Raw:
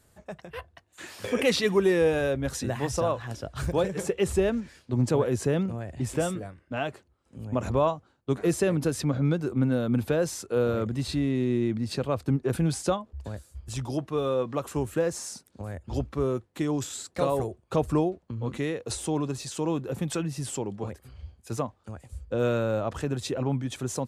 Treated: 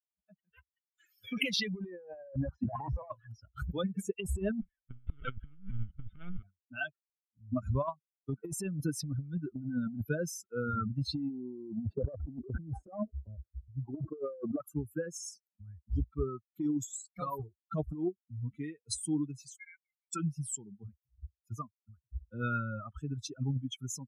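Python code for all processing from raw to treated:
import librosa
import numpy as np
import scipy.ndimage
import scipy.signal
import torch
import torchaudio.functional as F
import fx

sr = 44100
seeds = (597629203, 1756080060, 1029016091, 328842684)

y = fx.chain(x, sr, fx.lowpass(hz=2200.0, slope=12),
    fx.band_shelf(hz=750.0, db=11.0, octaves=1.2),
    fx.leveller(passes=1), at=(1.91, 3.09))
y = fx.chain(y, sr, fx.halfwave_hold(),
    fx.lpc_vocoder(seeds[0], excitation='pitch_kept', order=10), at=(4.61, 6.43))
y = fx.chain(y, sr, fx.curve_eq(hz=(180.0, 590.0, 5000.0), db=(0, 11, -27)),
    fx.sustainer(db_per_s=130.0), at=(11.3, 14.6))
y = fx.chain(y, sr, fx.highpass(hz=1100.0, slope=12),
    fx.level_steps(step_db=14),
    fx.freq_invert(carrier_hz=2600), at=(19.56, 20.13))
y = fx.bin_expand(y, sr, power=3.0)
y = fx.tilt_eq(y, sr, slope=-2.0)
y = fx.over_compress(y, sr, threshold_db=-38.0, ratio=-1.0)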